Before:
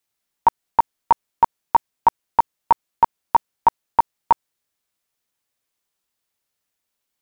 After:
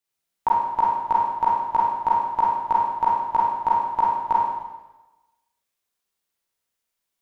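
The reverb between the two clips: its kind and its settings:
four-comb reverb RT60 1.1 s, combs from 33 ms, DRR −5 dB
level −8 dB

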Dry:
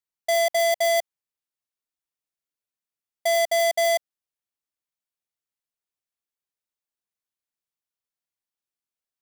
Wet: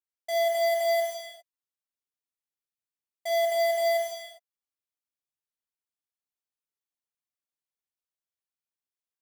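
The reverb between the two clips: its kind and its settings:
reverb whose tail is shaped and stops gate 430 ms falling, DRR −4 dB
level −12 dB

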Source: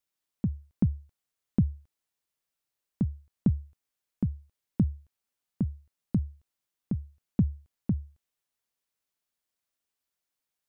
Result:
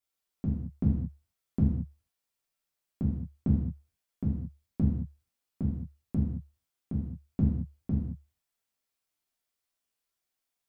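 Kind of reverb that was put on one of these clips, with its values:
reverb whose tail is shaped and stops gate 250 ms falling, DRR −5.5 dB
level −6 dB

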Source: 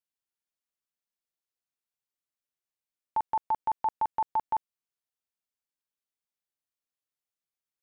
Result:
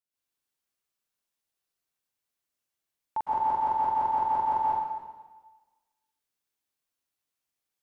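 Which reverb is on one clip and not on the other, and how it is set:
dense smooth reverb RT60 1.3 s, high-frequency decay 1×, pre-delay 100 ms, DRR −8 dB
level −2.5 dB

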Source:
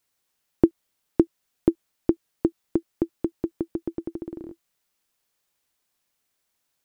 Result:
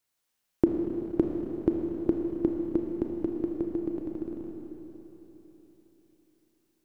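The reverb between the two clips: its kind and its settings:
four-comb reverb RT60 4 s, combs from 26 ms, DRR 1 dB
level −5 dB

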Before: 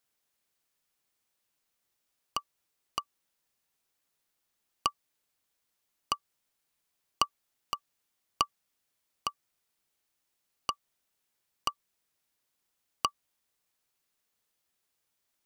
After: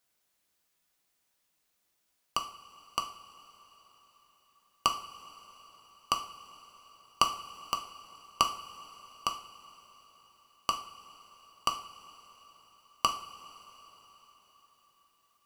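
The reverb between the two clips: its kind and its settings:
coupled-rooms reverb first 0.45 s, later 4.7 s, from −18 dB, DRR 3.5 dB
level +2 dB

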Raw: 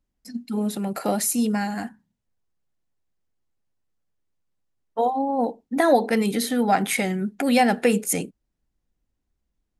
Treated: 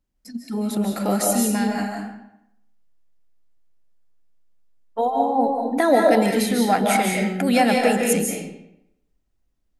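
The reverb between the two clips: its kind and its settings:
comb and all-pass reverb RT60 0.78 s, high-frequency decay 0.8×, pre-delay 115 ms, DRR 0 dB

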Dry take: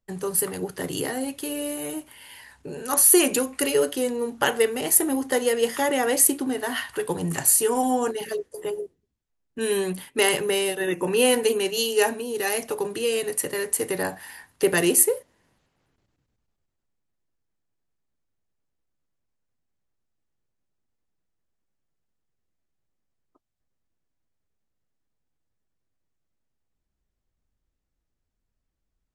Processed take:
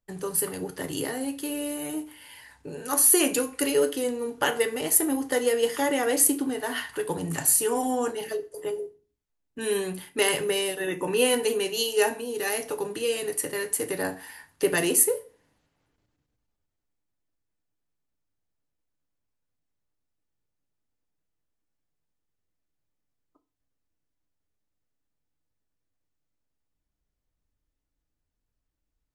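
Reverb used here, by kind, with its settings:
feedback delay network reverb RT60 0.38 s, low-frequency decay 1×, high-frequency decay 0.85×, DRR 8 dB
level −3 dB

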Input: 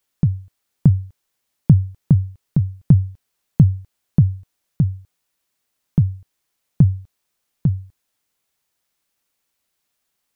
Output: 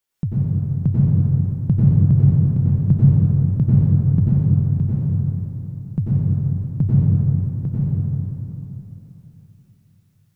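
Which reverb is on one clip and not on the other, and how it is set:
dense smooth reverb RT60 3.5 s, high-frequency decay 0.6×, pre-delay 80 ms, DRR −9 dB
level −7 dB

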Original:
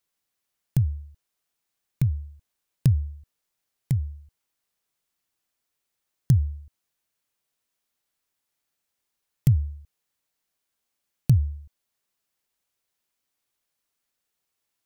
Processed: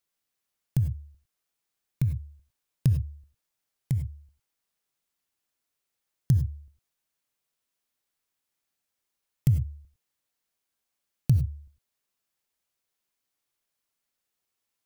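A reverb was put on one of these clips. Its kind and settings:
reverb whose tail is shaped and stops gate 120 ms rising, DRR 8.5 dB
level −3 dB

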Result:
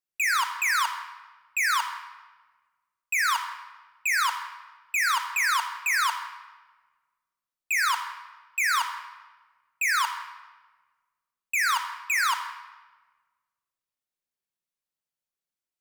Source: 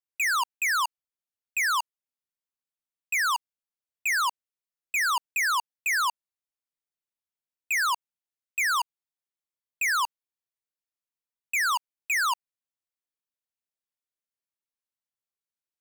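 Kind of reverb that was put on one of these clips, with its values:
rectangular room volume 1,300 cubic metres, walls mixed, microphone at 0.95 metres

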